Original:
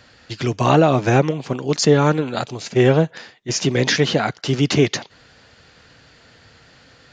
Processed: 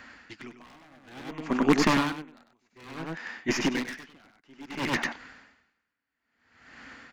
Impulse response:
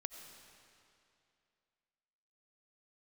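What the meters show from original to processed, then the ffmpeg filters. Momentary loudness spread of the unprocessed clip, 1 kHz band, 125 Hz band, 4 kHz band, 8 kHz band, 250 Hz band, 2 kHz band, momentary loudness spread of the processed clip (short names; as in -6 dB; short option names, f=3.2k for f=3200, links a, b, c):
10 LU, -10.5 dB, -20.0 dB, -12.0 dB, -13.5 dB, -9.0 dB, -7.0 dB, 23 LU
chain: -filter_complex "[0:a]aeval=exprs='0.75*(cos(1*acos(clip(val(0)/0.75,-1,1)))-cos(1*PI/2))+0.0376*(cos(6*acos(clip(val(0)/0.75,-1,1)))-cos(6*PI/2))+0.0299*(cos(7*acos(clip(val(0)/0.75,-1,1)))-cos(7*PI/2))':c=same,equalizer=f=125:t=o:w=1:g=-12,equalizer=f=250:t=o:w=1:g=10,equalizer=f=500:t=o:w=1:g=-6,equalizer=f=1k:t=o:w=1:g=6,equalizer=f=2k:t=o:w=1:g=9,equalizer=f=4k:t=o:w=1:g=-6,acrossover=split=4600[a][b];[b]acompressor=threshold=-39dB:ratio=4:attack=1:release=60[c];[a][c]amix=inputs=2:normalize=0,aeval=exprs='0.282*(abs(mod(val(0)/0.282+3,4)-2)-1)':c=same,aecho=1:1:98:0.631,aeval=exprs='val(0)*pow(10,-39*(0.5-0.5*cos(2*PI*0.58*n/s))/20)':c=same"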